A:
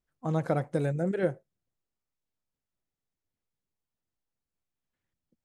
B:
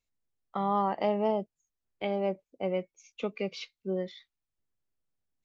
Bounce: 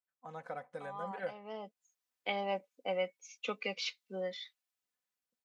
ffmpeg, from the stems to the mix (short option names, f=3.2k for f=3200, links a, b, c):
-filter_complex "[0:a]lowpass=f=1.3k:p=1,equalizer=f=330:w=2:g=-12.5,volume=-4.5dB,asplit=2[a][b];[1:a]adelay=250,volume=-0.5dB[c];[b]apad=whole_len=251254[d];[c][d]sidechaincompress=threshold=-51dB:ratio=4:attack=8.2:release=450[e];[a][e]amix=inputs=2:normalize=0,highpass=f=1.2k:p=1,aecho=1:1:4:0.54,dynaudnorm=f=220:g=9:m=4dB"